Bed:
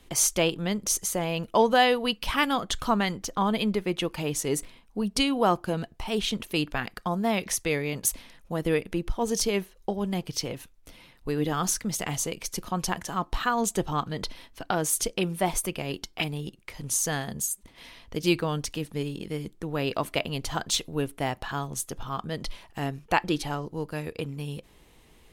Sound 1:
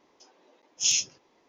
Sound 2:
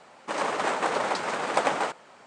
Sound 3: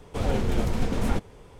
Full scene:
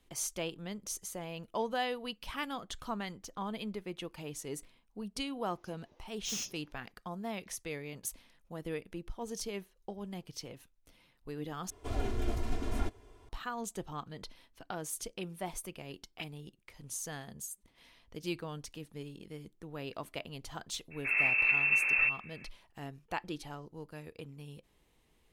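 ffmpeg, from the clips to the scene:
-filter_complex "[3:a]asplit=2[a][b];[0:a]volume=-13.5dB[c];[1:a]asoftclip=type=hard:threshold=-28dB[d];[a]aecho=1:1:2.9:0.85[e];[b]lowpass=f=2.3k:t=q:w=0.5098,lowpass=f=2.3k:t=q:w=0.6013,lowpass=f=2.3k:t=q:w=0.9,lowpass=f=2.3k:t=q:w=2.563,afreqshift=-2700[f];[c]asplit=2[g][h];[g]atrim=end=11.704[i];[e]atrim=end=1.59,asetpts=PTS-STARTPTS,volume=-11.5dB[j];[h]atrim=start=13.286[k];[d]atrim=end=1.48,asetpts=PTS-STARTPTS,volume=-8dB,afade=t=in:d=0.004:c=hsin,afade=t=out:st=1.476:d=0.004:c=hsin,adelay=5440[l];[f]atrim=end=1.59,asetpts=PTS-STARTPTS,volume=-5dB,afade=t=in:d=0.02,afade=t=out:st=1.57:d=0.02,adelay=20900[m];[i][j]acrossfade=d=0.004:c1=hsin:c2=hsin[n];[n][k]acrossfade=d=0.004:c1=hsin:c2=hsin[o];[o][l][m]amix=inputs=3:normalize=0"

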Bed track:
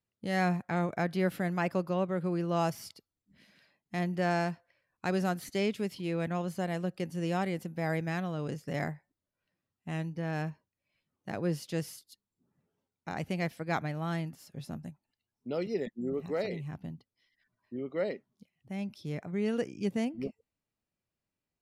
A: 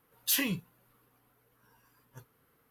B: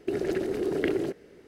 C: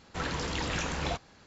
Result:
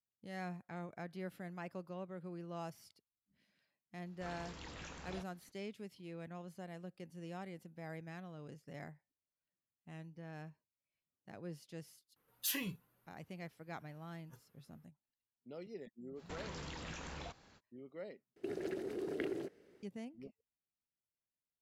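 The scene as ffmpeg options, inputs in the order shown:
-filter_complex "[3:a]asplit=2[a][b];[0:a]volume=-15.5dB[c];[b]acompressor=threshold=-36dB:ratio=6:attack=3.2:release=140:knee=1:detection=peak[d];[2:a]highpass=f=110:p=1[e];[c]asplit=2[f][g];[f]atrim=end=18.364[h];[e]atrim=end=1.47,asetpts=PTS-STARTPTS,volume=-12dB[i];[g]atrim=start=19.826[j];[a]atrim=end=1.46,asetpts=PTS-STARTPTS,volume=-17.5dB,afade=t=in:d=0.004:c=hsin,afade=t=out:st=1.456:d=0.004:c=hsin,adelay=4060[k];[1:a]atrim=end=2.7,asetpts=PTS-STARTPTS,volume=-9dB,afade=t=in:d=0.004:c=hsin,afade=t=out:st=2.696:d=0.004:c=hsin,adelay=12160[l];[d]atrim=end=1.46,asetpts=PTS-STARTPTS,volume=-7dB,afade=t=in:d=0.05,afade=t=out:st=1.41:d=0.05,adelay=16150[m];[h][i]acrossfade=d=0.004:c1=hsin:c2=hsin[n];[n][j]acrossfade=d=0.004:c1=hsin:c2=hsin[o];[o][k][l][m]amix=inputs=4:normalize=0"

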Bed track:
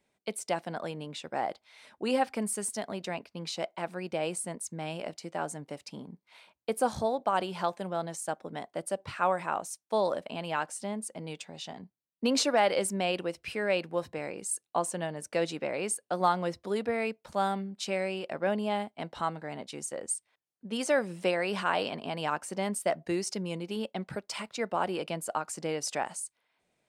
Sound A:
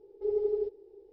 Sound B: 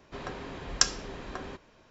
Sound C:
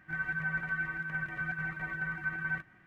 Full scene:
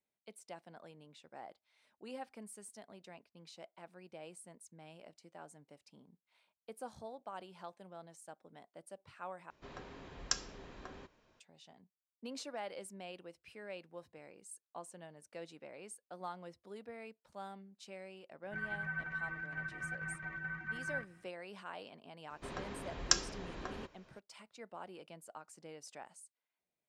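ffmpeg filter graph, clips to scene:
-filter_complex "[2:a]asplit=2[a][b];[0:a]volume=-18.5dB[c];[3:a]aresample=16000,aresample=44100[d];[c]asplit=2[e][f];[e]atrim=end=9.504[g];[a]atrim=end=1.9,asetpts=PTS-STARTPTS,volume=-11dB[h];[f]atrim=start=11.396[i];[d]atrim=end=2.86,asetpts=PTS-STARTPTS,volume=-6.5dB,afade=t=in:d=0.004:c=hsin,afade=t=out:st=2.856:d=0.004:c=hsin,adelay=18430[j];[b]atrim=end=1.9,asetpts=PTS-STARTPTS,volume=-5dB,afade=t=in:d=0.004:c=hsin,afade=t=out:st=1.896:d=0.004:c=hsin,adelay=22300[k];[g][h]acrossfade=d=0.004:c1=hsin:c2=hsin[l];[l][i]acrossfade=d=0.004:c1=hsin:c2=hsin[m];[m][j][k]amix=inputs=3:normalize=0"

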